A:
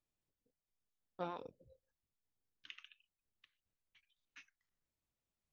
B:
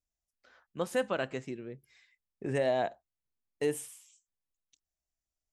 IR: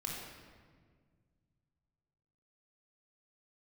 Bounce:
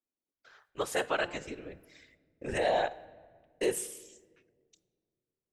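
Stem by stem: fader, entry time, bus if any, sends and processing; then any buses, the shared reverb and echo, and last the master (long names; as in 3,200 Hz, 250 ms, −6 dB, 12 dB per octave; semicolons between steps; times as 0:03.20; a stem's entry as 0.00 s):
−7.0 dB, 0.00 s, no send, Butterworth high-pass 230 Hz; spectral tilt −4.5 dB per octave
+3.0 dB, 0.00 s, send −17 dB, noise gate with hold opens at −55 dBFS; parametric band 210 Hz −12.5 dB 1.5 octaves; random phases in short frames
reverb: on, RT60 1.7 s, pre-delay 21 ms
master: parametric band 5,600 Hz +2.5 dB 2.1 octaves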